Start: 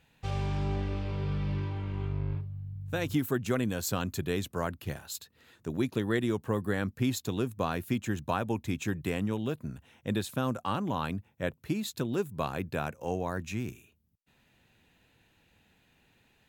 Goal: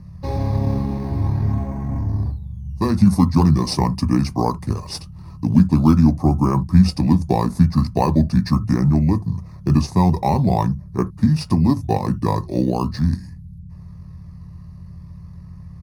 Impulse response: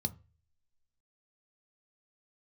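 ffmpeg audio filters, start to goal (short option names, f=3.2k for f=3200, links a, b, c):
-filter_complex "[0:a]aeval=exprs='val(0)+0.00562*(sin(2*PI*50*n/s)+sin(2*PI*2*50*n/s)/2+sin(2*PI*3*50*n/s)/3+sin(2*PI*4*50*n/s)/4+sin(2*PI*5*50*n/s)/5)':c=same,asetrate=29433,aresample=44100,atempo=1.49831,equalizer=f=100:t=o:w=0.67:g=-6,equalizer=f=1k:t=o:w=0.67:g=9,equalizer=f=2.5k:t=o:w=0.67:g=-6,equalizer=f=6.3k:t=o:w=0.67:g=6,asplit=2[a][b];[b]acrusher=samples=11:mix=1:aa=0.000001:lfo=1:lforange=11:lforate=0.41,volume=-9.5dB[c];[a][c]amix=inputs=2:normalize=0[d];[1:a]atrim=start_sample=2205,atrim=end_sample=3528[e];[d][e]afir=irnorm=-1:irlink=0,asetrate=45938,aresample=44100,volume=3.5dB"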